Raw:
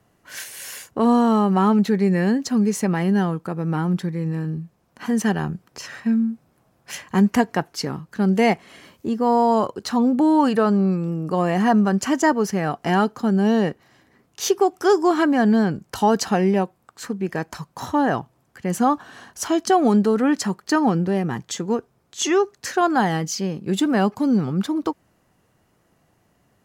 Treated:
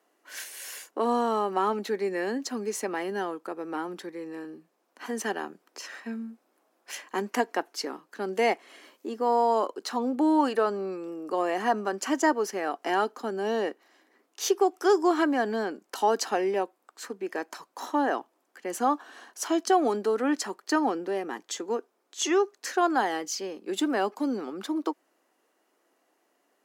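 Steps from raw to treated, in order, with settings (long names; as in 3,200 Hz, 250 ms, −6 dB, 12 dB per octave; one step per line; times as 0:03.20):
Butterworth high-pass 280 Hz 36 dB per octave
level −5 dB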